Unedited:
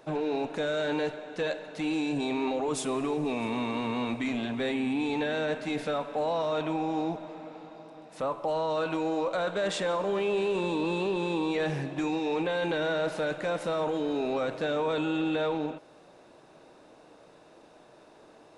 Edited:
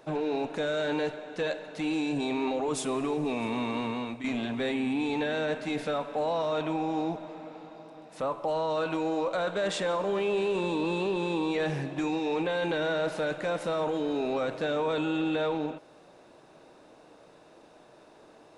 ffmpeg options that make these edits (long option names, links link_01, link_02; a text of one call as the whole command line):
ffmpeg -i in.wav -filter_complex "[0:a]asplit=2[link_01][link_02];[link_01]atrim=end=4.24,asetpts=PTS-STARTPTS,afade=type=out:start_time=3.81:duration=0.43:silence=0.354813[link_03];[link_02]atrim=start=4.24,asetpts=PTS-STARTPTS,afade=type=in:duration=0.004:curve=hsin:silence=0.354813[link_04];[link_03][link_04]concat=n=2:v=0:a=1" out.wav